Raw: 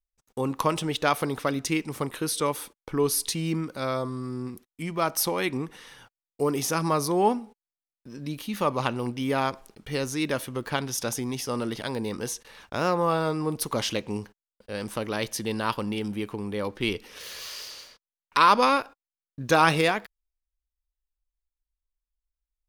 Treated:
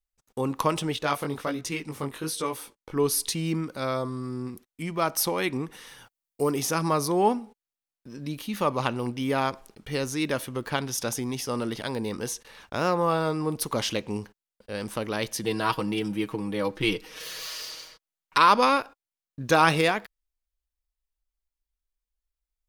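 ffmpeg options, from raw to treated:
-filter_complex "[0:a]asplit=3[s0][s1][s2];[s0]afade=t=out:st=0.94:d=0.02[s3];[s1]flanger=delay=16.5:depth=5.1:speed=1.2,afade=t=in:st=0.94:d=0.02,afade=t=out:st=2.95:d=0.02[s4];[s2]afade=t=in:st=2.95:d=0.02[s5];[s3][s4][s5]amix=inputs=3:normalize=0,asettb=1/sr,asplit=3[s6][s7][s8];[s6]atrim=end=5.724[s9];[s7]atrim=start=5.72:end=6.52,asetpts=PTS-STARTPTS,afade=t=in:d=0.004:c=qsin,afade=t=out:st=0.796:d=0.004:c=qsin,highshelf=f=8200:g=9[s10];[s8]atrim=start=6.516[s11];[s9][s10]acrossfade=d=0.004:c1=hsin:c2=qsin[s12];[s12][s11]acrossfade=d=0.004:c1=qsin:c2=hsin,asettb=1/sr,asplit=3[s13][s14][s15];[s13]atrim=end=15.434[s16];[s14]atrim=start=15.43:end=18.38,asetpts=PTS-STARTPTS,afade=t=in:d=0.004:c=qsin,afade=t=out:st=2.946:d=0.004:c=qsin,aecho=1:1:6.3:0.82,atrim=end_sample=130095[s17];[s15]atrim=start=18.376[s18];[s16][s17]acrossfade=d=0.004:c1=hsin:c2=qsin[s19];[s19][s18]acrossfade=d=0.004:c1=qsin:c2=hsin"

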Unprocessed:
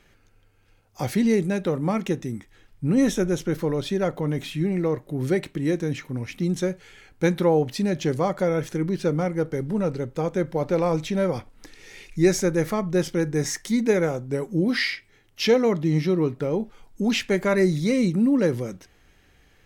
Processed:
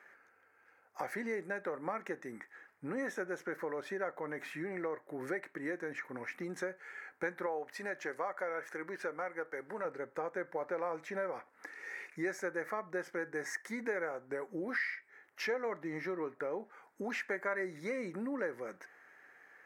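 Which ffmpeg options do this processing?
-filter_complex "[0:a]asettb=1/sr,asplit=3[s0][s1][s2];[s0]atrim=end=7.464[s3];[s1]atrim=start=7.46:end=9.85,asetpts=PTS-STARTPTS,afade=t=in:d=0.004:c=qsin,afade=t=out:st=2.386:d=0.004:c=qsin,lowshelf=f=350:g=-10.5[s4];[s2]atrim=start=9.846[s5];[s3][s4]acrossfade=d=0.004:c1=hsin:c2=qsin[s6];[s6][s5]acrossfade=d=0.004:c1=qsin:c2=hsin,highpass=530,highshelf=f=2400:t=q:w=3:g=-10.5,acompressor=threshold=0.0112:ratio=2.5"

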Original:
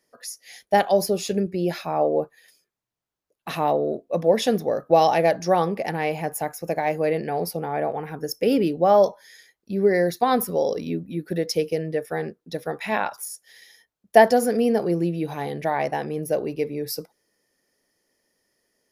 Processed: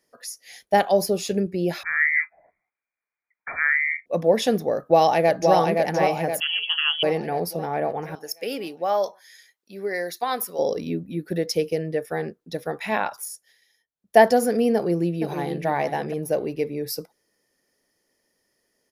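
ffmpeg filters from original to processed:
-filter_complex "[0:a]asettb=1/sr,asplit=3[s0][s1][s2];[s0]atrim=end=1.834[s3];[s1]atrim=start=1.83:end=4.06,asetpts=PTS-STARTPTS,afade=t=in:d=0.004:c=qsin,afade=t=out:st=2.226:d=0.004:c=qsin,lowpass=f=2100:t=q:w=0.5098,lowpass=f=2100:t=q:w=0.6013,lowpass=f=2100:t=q:w=0.9,lowpass=f=2100:t=q:w=2.563,afreqshift=-2500[s4];[s2]atrim=start=4.056[s5];[s3][s4]acrossfade=d=0.004:c1=hsin:c2=qsin[s6];[s6][s5]acrossfade=d=0.004:c1=qsin:c2=hsin,asplit=2[s7][s8];[s8]afade=t=in:st=4.76:d=0.01,afade=t=out:st=5.55:d=0.01,aecho=0:1:520|1040|1560|2080|2600|3120|3640:0.630957|0.347027|0.190865|0.104976|0.0577365|0.0317551|0.0174653[s9];[s7][s9]amix=inputs=2:normalize=0,asettb=1/sr,asplit=3[s10][s11][s12];[s10]atrim=end=6.404[s13];[s11]atrim=start=6.4:end=7.03,asetpts=PTS-STARTPTS,afade=t=in:d=0.004:c=qsin,afade=t=out:st=0.626:d=0.004:c=qsin,lowpass=f=3000:t=q:w=0.5098,lowpass=f=3000:t=q:w=0.6013,lowpass=f=3000:t=q:w=0.9,lowpass=f=3000:t=q:w=2.563,afreqshift=-3500[s14];[s12]atrim=start=7.026[s15];[s13][s14]acrossfade=d=0.004:c1=hsin:c2=qsin[s16];[s16][s15]acrossfade=d=0.004:c1=qsin:c2=hsin,asettb=1/sr,asplit=3[s17][s18][s19];[s17]atrim=end=8.154[s20];[s18]atrim=start=8.15:end=10.59,asetpts=PTS-STARTPTS,afade=t=in:d=0.004:c=qsin,afade=t=out:st=2.436:d=0.004:c=qsin,highpass=f=1200:p=1[s21];[s19]atrim=start=10.586[s22];[s20][s21]acrossfade=d=0.004:c1=hsin:c2=qsin[s23];[s23][s22]acrossfade=d=0.004:c1=qsin:c2=hsin,asplit=2[s24][s25];[s25]afade=t=in:st=14.74:d=0.01,afade=t=out:st=15.66:d=0.01,aecho=0:1:470|940:0.354813|0.053222[s26];[s24][s26]amix=inputs=2:normalize=0,asplit=3[s27][s28][s29];[s27]atrim=end=13.57,asetpts=PTS-STARTPTS,afade=t=out:st=13.29:d=0.28:silence=0.199526[s30];[s28]atrim=start=13.57:end=13.93,asetpts=PTS-STARTPTS,volume=0.2[s31];[s29]atrim=start=13.93,asetpts=PTS-STARTPTS,afade=t=in:d=0.28:silence=0.199526[s32];[s30][s31][s32]concat=n=3:v=0:a=1"

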